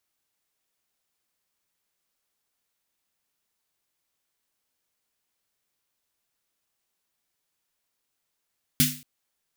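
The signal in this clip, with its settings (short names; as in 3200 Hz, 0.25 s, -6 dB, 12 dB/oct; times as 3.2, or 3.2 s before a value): snare drum length 0.23 s, tones 150 Hz, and 250 Hz, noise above 1900 Hz, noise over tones 3 dB, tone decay 0.37 s, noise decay 0.38 s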